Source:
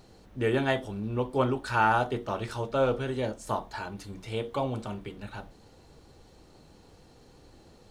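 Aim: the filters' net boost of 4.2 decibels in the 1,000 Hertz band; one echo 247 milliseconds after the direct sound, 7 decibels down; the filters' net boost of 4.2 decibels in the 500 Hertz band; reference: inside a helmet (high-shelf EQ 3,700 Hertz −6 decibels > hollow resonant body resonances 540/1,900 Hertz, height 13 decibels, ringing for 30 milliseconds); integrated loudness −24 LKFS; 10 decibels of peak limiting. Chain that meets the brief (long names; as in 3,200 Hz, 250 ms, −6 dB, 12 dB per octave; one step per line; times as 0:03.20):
parametric band 500 Hz +4 dB
parametric band 1,000 Hz +4.5 dB
brickwall limiter −17.5 dBFS
high-shelf EQ 3,700 Hz −6 dB
single-tap delay 247 ms −7 dB
hollow resonant body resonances 540/1,900 Hz, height 13 dB, ringing for 30 ms
level −1 dB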